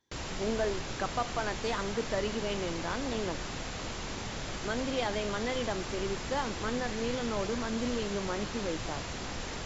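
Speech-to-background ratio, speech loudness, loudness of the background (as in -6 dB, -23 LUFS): 3.0 dB, -35.0 LUFS, -38.0 LUFS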